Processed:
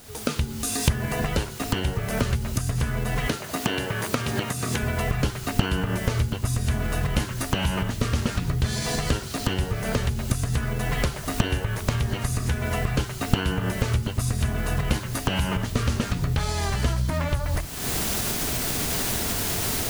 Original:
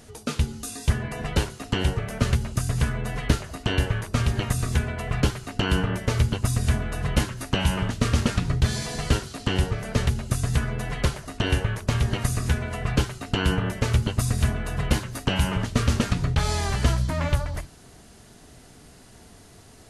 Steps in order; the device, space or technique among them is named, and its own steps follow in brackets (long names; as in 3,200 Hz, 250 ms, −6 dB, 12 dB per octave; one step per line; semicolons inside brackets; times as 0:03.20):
0:03.27–0:04.82: high-pass filter 170 Hz 12 dB per octave
cheap recorder with automatic gain (white noise bed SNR 23 dB; camcorder AGC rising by 54 dB per second)
level −3.5 dB